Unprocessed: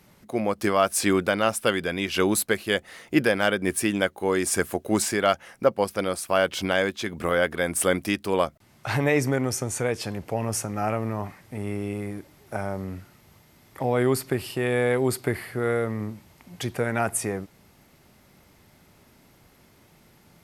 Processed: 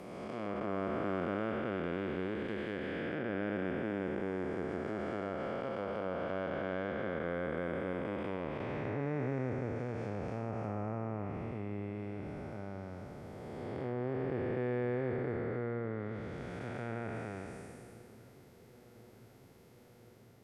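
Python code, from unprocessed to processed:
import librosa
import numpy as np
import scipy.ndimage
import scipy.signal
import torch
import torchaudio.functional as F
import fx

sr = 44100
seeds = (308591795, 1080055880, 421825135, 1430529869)

y = fx.spec_blur(x, sr, span_ms=847.0)
y = fx.env_lowpass_down(y, sr, base_hz=1700.0, full_db=-26.0)
y = fx.echo_filtered(y, sr, ms=1035, feedback_pct=80, hz=2100.0, wet_db=-22.5)
y = y * librosa.db_to_amplitude(-6.5)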